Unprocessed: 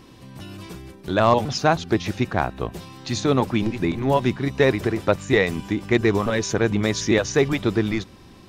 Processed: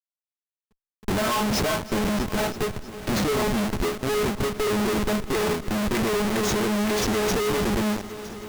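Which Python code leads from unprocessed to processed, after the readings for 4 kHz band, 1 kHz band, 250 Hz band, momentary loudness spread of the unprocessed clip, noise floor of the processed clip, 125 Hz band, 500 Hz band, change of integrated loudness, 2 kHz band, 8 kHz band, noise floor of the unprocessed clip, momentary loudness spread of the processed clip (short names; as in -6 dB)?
+0.5 dB, -3.0 dB, -2.5 dB, 17 LU, under -85 dBFS, -6.0 dB, -3.5 dB, -3.0 dB, -3.0 dB, +2.0 dB, -47 dBFS, 5 LU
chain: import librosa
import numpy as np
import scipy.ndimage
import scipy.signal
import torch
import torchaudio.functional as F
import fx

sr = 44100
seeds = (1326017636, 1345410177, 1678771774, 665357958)

y = fx.peak_eq(x, sr, hz=330.0, db=9.0, octaves=0.59)
y = fx.stiff_resonator(y, sr, f0_hz=210.0, decay_s=0.29, stiffness=0.002)
y = fx.schmitt(y, sr, flips_db=-39.5)
y = fx.echo_heads(y, sr, ms=321, heads='all three', feedback_pct=48, wet_db=-19)
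y = fx.end_taper(y, sr, db_per_s=120.0)
y = y * 10.0 ** (8.5 / 20.0)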